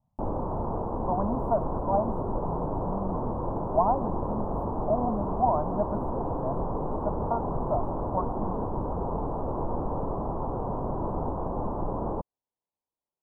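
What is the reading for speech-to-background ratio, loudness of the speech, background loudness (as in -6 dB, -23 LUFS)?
0.0 dB, -32.0 LUFS, -32.0 LUFS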